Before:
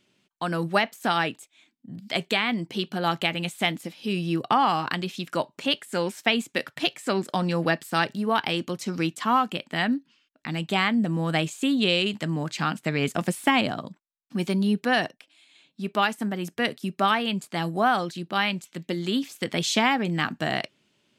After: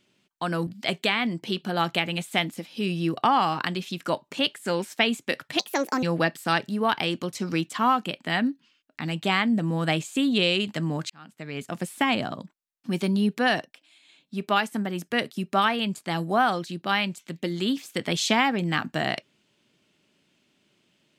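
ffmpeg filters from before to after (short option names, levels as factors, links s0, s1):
-filter_complex "[0:a]asplit=5[s0][s1][s2][s3][s4];[s0]atrim=end=0.672[s5];[s1]atrim=start=1.938:end=6.864[s6];[s2]atrim=start=6.86:end=7.49,asetpts=PTS-STARTPTS,asetrate=63504,aresample=44100[s7];[s3]atrim=start=7.486:end=12.56,asetpts=PTS-STARTPTS,afade=t=out:st=5.07:d=0.004:c=hsin[s8];[s4]atrim=start=12.56,asetpts=PTS-STARTPTS,afade=t=in:d=1.29[s9];[s5][s6]acrossfade=d=0.004:c1=hsin:c2=hsin[s10];[s10][s7]acrossfade=d=0.004:c1=hsin:c2=hsin[s11];[s8][s9]concat=n=2:v=0:a=1[s12];[s11][s12]acrossfade=d=0.004:c1=hsin:c2=hsin"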